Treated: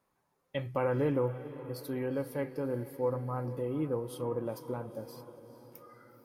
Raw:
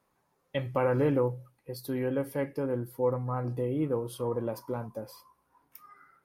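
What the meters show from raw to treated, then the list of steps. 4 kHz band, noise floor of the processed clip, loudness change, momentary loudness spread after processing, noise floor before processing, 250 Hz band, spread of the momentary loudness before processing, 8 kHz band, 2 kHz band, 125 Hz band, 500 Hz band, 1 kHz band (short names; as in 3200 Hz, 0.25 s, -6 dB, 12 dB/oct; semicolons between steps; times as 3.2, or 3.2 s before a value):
-3.5 dB, -78 dBFS, -3.5 dB, 20 LU, -74 dBFS, -3.5 dB, 15 LU, -3.5 dB, -3.0 dB, -3.5 dB, -3.0 dB, -3.0 dB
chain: diffused feedback echo 0.463 s, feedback 56%, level -14 dB; gain -3.5 dB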